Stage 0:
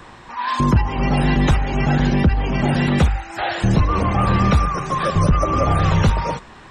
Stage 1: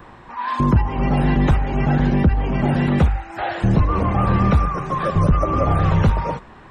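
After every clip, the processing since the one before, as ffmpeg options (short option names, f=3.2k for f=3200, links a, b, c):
-af "equalizer=f=6.5k:w=0.46:g=-12"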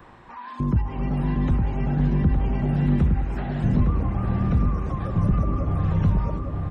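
-filter_complex "[0:a]acrossover=split=330[a][b];[b]acompressor=threshold=-31dB:ratio=6[c];[a][c]amix=inputs=2:normalize=0,asplit=2[d][e];[e]adelay=861,lowpass=f=2.3k:p=1,volume=-4dB,asplit=2[f][g];[g]adelay=861,lowpass=f=2.3k:p=1,volume=0.53,asplit=2[h][i];[i]adelay=861,lowpass=f=2.3k:p=1,volume=0.53,asplit=2[j][k];[k]adelay=861,lowpass=f=2.3k:p=1,volume=0.53,asplit=2[l][m];[m]adelay=861,lowpass=f=2.3k:p=1,volume=0.53,asplit=2[n][o];[o]adelay=861,lowpass=f=2.3k:p=1,volume=0.53,asplit=2[p][q];[q]adelay=861,lowpass=f=2.3k:p=1,volume=0.53[r];[d][f][h][j][l][n][p][r]amix=inputs=8:normalize=0,volume=-5.5dB"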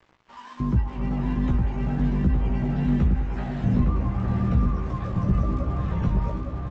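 -filter_complex "[0:a]aresample=16000,aeval=exprs='sgn(val(0))*max(abs(val(0))-0.00596,0)':c=same,aresample=44100,asplit=2[a][b];[b]adelay=16,volume=-4dB[c];[a][c]amix=inputs=2:normalize=0,volume=-2.5dB"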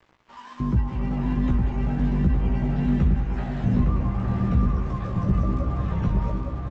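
-af "aecho=1:1:187:0.282"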